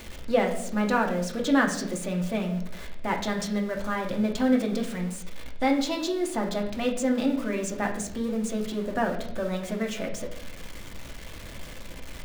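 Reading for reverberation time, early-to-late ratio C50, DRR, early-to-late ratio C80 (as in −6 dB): 0.80 s, 8.5 dB, 1.0 dB, 11.5 dB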